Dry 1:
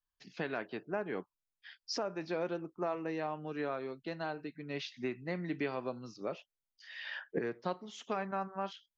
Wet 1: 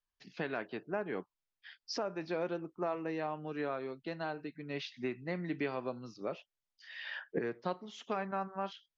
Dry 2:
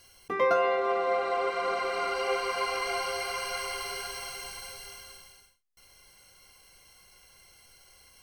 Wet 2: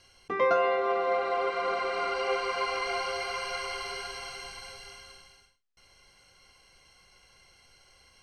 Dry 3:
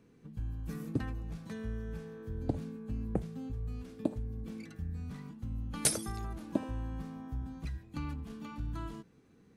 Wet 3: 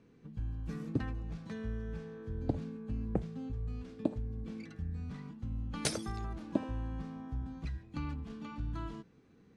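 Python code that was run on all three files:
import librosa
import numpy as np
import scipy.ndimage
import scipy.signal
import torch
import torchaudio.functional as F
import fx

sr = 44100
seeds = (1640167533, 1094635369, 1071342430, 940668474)

y = scipy.signal.sosfilt(scipy.signal.butter(2, 5800.0, 'lowpass', fs=sr, output='sos'), x)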